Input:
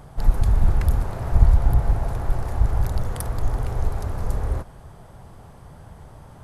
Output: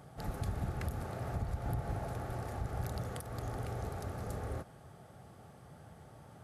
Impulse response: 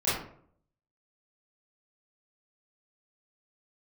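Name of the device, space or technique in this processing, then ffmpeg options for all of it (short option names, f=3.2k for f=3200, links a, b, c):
PA system with an anti-feedback notch: -af "highpass=110,asuperstop=centerf=990:order=4:qfactor=6.8,alimiter=limit=-19dB:level=0:latency=1:release=160,volume=-7.5dB"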